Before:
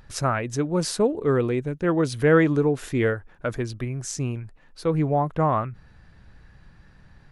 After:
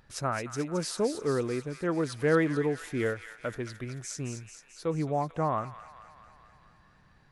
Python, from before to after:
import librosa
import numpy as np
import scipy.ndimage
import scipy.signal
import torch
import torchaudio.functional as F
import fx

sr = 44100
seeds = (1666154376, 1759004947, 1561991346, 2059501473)

p1 = fx.low_shelf(x, sr, hz=85.0, db=-9.5)
p2 = p1 + fx.echo_wet_highpass(p1, sr, ms=219, feedback_pct=64, hz=1700.0, wet_db=-7.0, dry=0)
y = p2 * librosa.db_to_amplitude(-6.5)